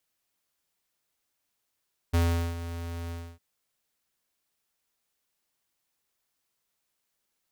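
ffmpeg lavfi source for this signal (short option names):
-f lavfi -i "aevalsrc='0.0794*(2*lt(mod(84.7*t,1),0.5)-1)':d=1.256:s=44100,afade=t=in:d=0.016,afade=t=out:st=0.016:d=0.399:silence=0.211,afade=t=out:st=0.98:d=0.276"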